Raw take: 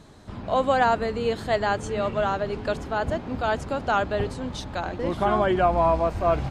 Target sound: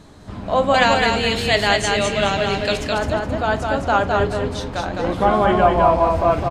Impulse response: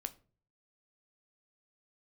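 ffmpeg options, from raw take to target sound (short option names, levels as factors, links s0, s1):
-filter_complex "[0:a]asettb=1/sr,asplit=3[s0][s1][s2];[s0]atrim=end=0.744[s3];[s1]atrim=start=0.74:end=2.85,asetpts=PTS-STARTPTS,afade=t=in:d=0.004:c=qsin,afade=t=out:st=2.106:d=0.004:c=qsin,highshelf=f=1700:t=q:w=1.5:g=9.5[s4];[s2]atrim=start=2.846[s5];[s3][s4]acrossfade=d=0.004:c1=hsin:c2=qsin[s6];[s6][s5]acrossfade=d=0.004:c1=qsin:c2=hsin,aecho=1:1:210|420|630|840:0.668|0.18|0.0487|0.0132[s7];[1:a]atrim=start_sample=2205[s8];[s7][s8]afir=irnorm=-1:irlink=0,volume=2.11"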